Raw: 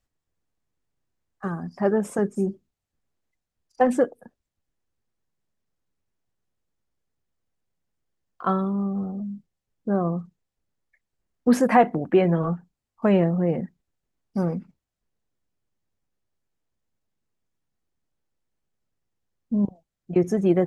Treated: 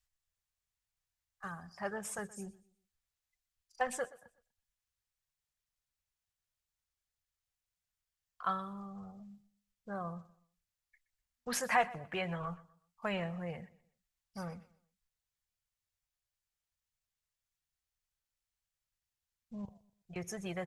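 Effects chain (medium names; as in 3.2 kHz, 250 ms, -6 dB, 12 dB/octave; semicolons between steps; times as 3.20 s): amplifier tone stack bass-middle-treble 10-0-10; on a send: feedback delay 123 ms, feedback 32%, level -20 dB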